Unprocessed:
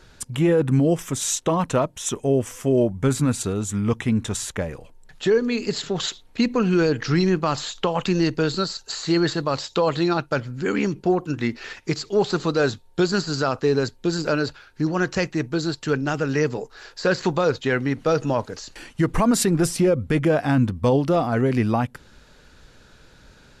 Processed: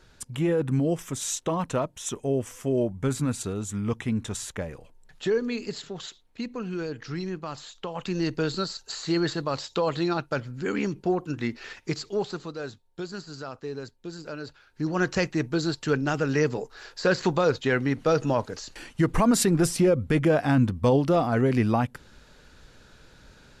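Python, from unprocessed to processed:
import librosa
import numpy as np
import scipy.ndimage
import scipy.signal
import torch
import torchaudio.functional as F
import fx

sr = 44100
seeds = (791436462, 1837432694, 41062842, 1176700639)

y = fx.gain(x, sr, db=fx.line((5.5, -6.0), (6.05, -13.0), (7.8, -13.0), (8.33, -5.0), (12.05, -5.0), (12.53, -15.0), (14.36, -15.0), (15.03, -2.0)))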